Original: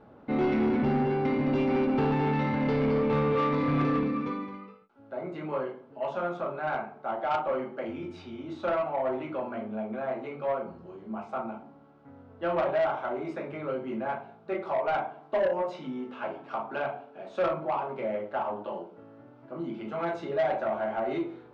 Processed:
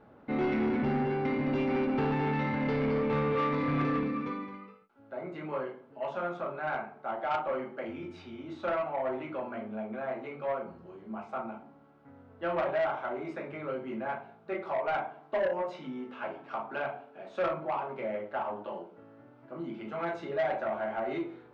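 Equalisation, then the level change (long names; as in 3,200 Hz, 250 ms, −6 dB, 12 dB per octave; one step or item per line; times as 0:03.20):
parametric band 1,900 Hz +4 dB 1 octave
−3.5 dB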